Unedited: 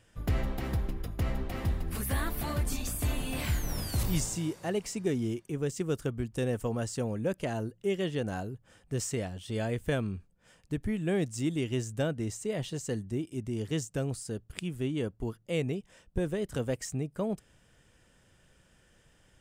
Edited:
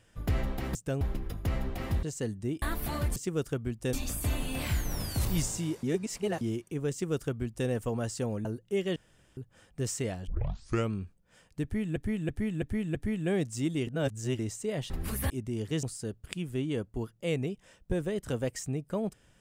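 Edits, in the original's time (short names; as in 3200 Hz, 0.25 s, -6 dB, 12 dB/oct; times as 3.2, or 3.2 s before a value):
1.77–2.17 swap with 12.71–13.3
4.61–5.19 reverse
5.69–6.46 copy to 2.71
7.23–7.58 cut
8.09–8.5 room tone
9.4 tape start 0.64 s
10.76–11.09 loop, 5 plays
11.68–12.2 reverse
13.83–14.09 move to 0.75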